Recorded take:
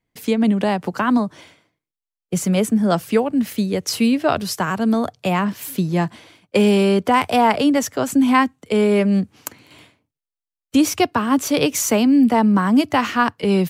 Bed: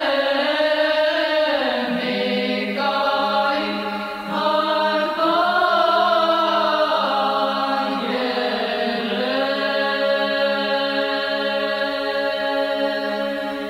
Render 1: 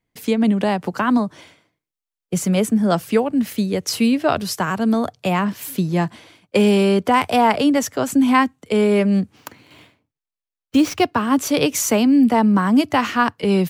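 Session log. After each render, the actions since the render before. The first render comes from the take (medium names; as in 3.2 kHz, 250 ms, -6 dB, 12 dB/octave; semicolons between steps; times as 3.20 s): 9.36–11.20 s: median filter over 5 samples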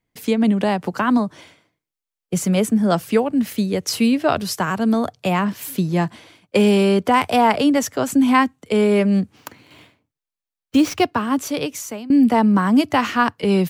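10.99–12.10 s: fade out, to -21 dB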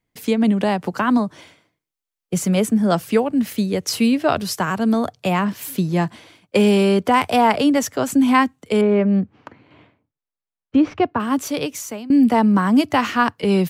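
8.81–11.20 s: Bessel low-pass 1.6 kHz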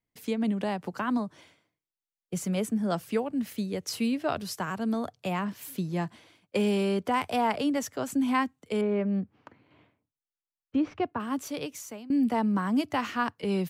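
trim -11 dB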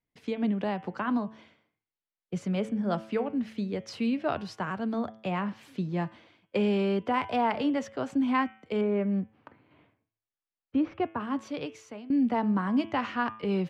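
low-pass 3.4 kHz 12 dB/octave; de-hum 110 Hz, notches 32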